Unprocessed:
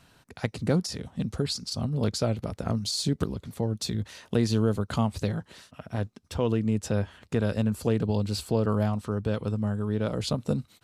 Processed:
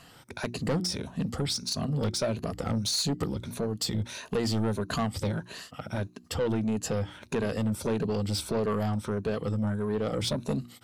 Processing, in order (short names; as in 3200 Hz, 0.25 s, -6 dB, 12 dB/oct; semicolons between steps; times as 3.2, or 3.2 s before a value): moving spectral ripple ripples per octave 1.5, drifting +1.6 Hz, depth 9 dB; low shelf 110 Hz -7 dB; notches 60/120/180/240/300/360 Hz; in parallel at 0 dB: compressor, threshold -35 dBFS, peak gain reduction 15.5 dB; on the sum: soft clip -22 dBFS, distortion -11 dB